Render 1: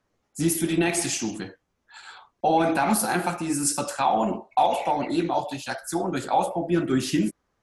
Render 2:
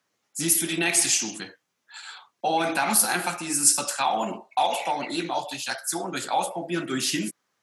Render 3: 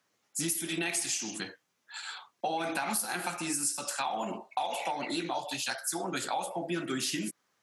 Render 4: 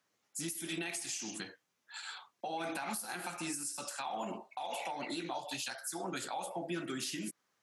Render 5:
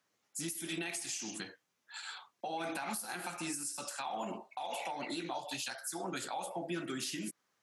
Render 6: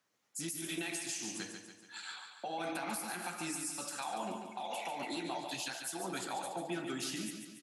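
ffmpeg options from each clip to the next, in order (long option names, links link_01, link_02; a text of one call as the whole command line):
ffmpeg -i in.wav -af "highpass=frequency=120:width=0.5412,highpass=frequency=120:width=1.3066,tiltshelf=frequency=1200:gain=-7" out.wav
ffmpeg -i in.wav -af "acompressor=threshold=-30dB:ratio=5" out.wav
ffmpeg -i in.wav -af "alimiter=level_in=0.5dB:limit=-24dB:level=0:latency=1:release=161,volume=-0.5dB,volume=-4dB" out.wav
ffmpeg -i in.wav -af anull out.wav
ffmpeg -i in.wav -af "aecho=1:1:143|286|429|572|715|858:0.447|0.228|0.116|0.0593|0.0302|0.0154,volume=-1dB" out.wav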